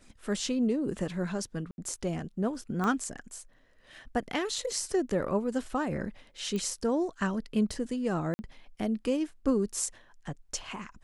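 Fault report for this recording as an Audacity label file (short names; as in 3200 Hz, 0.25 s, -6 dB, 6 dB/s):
1.710000	1.780000	gap 71 ms
2.840000	2.840000	pop -19 dBFS
6.560000	6.560000	pop -22 dBFS
8.340000	8.390000	gap 50 ms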